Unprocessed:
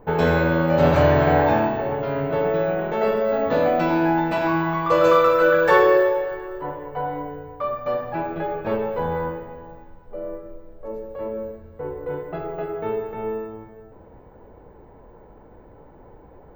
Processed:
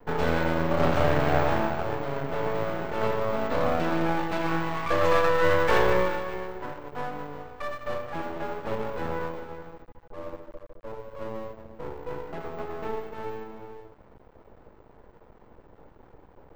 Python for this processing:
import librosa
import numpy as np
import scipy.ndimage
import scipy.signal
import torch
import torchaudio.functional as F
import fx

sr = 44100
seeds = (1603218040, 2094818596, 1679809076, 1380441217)

y = x + 10.0 ** (-12.0 / 20.0) * np.pad(x, (int(374 * sr / 1000.0), 0))[:len(x)]
y = np.maximum(y, 0.0)
y = F.gain(torch.from_numpy(y), -2.5).numpy()